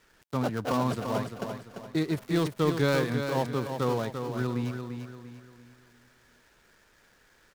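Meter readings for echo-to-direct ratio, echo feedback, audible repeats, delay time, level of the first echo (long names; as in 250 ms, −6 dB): −6.5 dB, 39%, 4, 343 ms, −7.0 dB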